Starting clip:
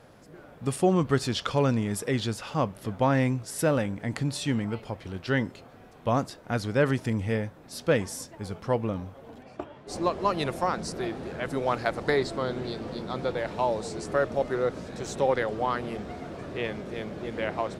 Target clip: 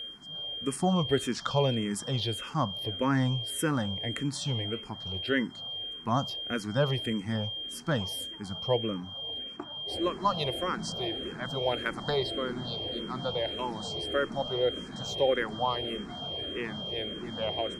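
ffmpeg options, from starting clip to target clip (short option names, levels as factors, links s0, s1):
-filter_complex "[0:a]aeval=exprs='val(0)+0.02*sin(2*PI*3200*n/s)':c=same,asplit=2[s0][s1];[s1]afreqshift=-1.7[s2];[s0][s2]amix=inputs=2:normalize=1"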